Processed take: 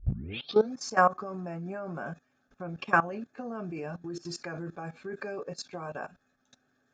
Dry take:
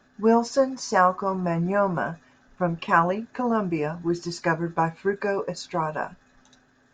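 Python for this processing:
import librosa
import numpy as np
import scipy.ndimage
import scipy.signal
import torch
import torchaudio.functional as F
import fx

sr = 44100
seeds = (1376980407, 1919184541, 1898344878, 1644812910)

y = fx.tape_start_head(x, sr, length_s=0.74)
y = fx.level_steps(y, sr, step_db=18)
y = fx.notch_comb(y, sr, f0_hz=990.0)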